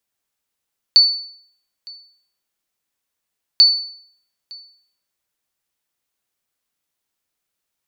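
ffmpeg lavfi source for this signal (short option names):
-f lavfi -i "aevalsrc='0.668*(sin(2*PI*4490*mod(t,2.64))*exp(-6.91*mod(t,2.64)/0.59)+0.0501*sin(2*PI*4490*max(mod(t,2.64)-0.91,0))*exp(-6.91*max(mod(t,2.64)-0.91,0)/0.59))':d=5.28:s=44100"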